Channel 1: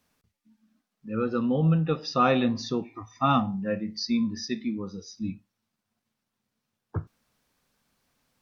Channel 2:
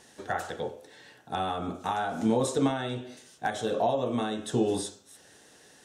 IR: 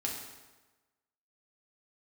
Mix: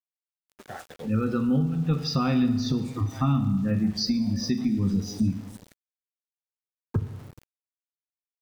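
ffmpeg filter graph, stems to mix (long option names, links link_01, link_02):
-filter_complex "[0:a]asubboost=boost=9.5:cutoff=190,acompressor=threshold=-24dB:ratio=16,volume=1.5dB,asplit=3[link_01][link_02][link_03];[link_02]volume=-5dB[link_04];[1:a]acrossover=split=520[link_05][link_06];[link_05]aeval=exprs='val(0)*(1-0.7/2+0.7/2*cos(2*PI*6.3*n/s))':channel_layout=same[link_07];[link_06]aeval=exprs='val(0)*(1-0.7/2-0.7/2*cos(2*PI*6.3*n/s))':channel_layout=same[link_08];[link_07][link_08]amix=inputs=2:normalize=0,alimiter=level_in=1dB:limit=-24dB:level=0:latency=1:release=499,volume=-1dB,adelay=400,volume=-1dB[link_09];[link_03]apad=whole_len=275495[link_10];[link_09][link_10]sidechaincompress=threshold=-43dB:ratio=8:attack=16:release=146[link_11];[2:a]atrim=start_sample=2205[link_12];[link_04][link_12]afir=irnorm=-1:irlink=0[link_13];[link_01][link_11][link_13]amix=inputs=3:normalize=0,aeval=exprs='val(0)*gte(abs(val(0)),0.00708)':channel_layout=same,alimiter=limit=-14.5dB:level=0:latency=1:release=423"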